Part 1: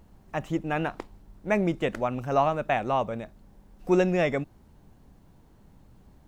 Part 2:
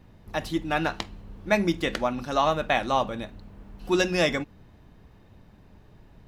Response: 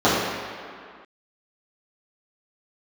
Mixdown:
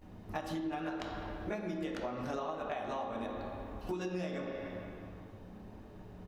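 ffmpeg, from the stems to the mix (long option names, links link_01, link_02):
-filter_complex "[0:a]acompressor=threshold=-25dB:ratio=6,volume=-8.5dB[link_01];[1:a]acompressor=threshold=-30dB:ratio=6,adelay=16,volume=-3dB,asplit=2[link_02][link_03];[link_03]volume=-21.5dB[link_04];[2:a]atrim=start_sample=2205[link_05];[link_04][link_05]afir=irnorm=-1:irlink=0[link_06];[link_01][link_02][link_06]amix=inputs=3:normalize=0,acompressor=threshold=-35dB:ratio=6"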